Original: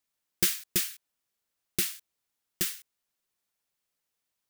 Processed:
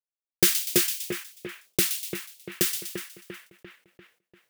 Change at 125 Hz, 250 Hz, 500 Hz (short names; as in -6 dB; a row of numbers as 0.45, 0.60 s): +6.0, +9.5, +13.0 dB